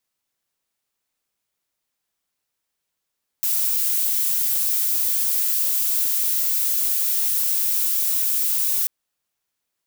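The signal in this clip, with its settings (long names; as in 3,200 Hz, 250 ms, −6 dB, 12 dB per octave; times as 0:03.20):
noise violet, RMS −21 dBFS 5.44 s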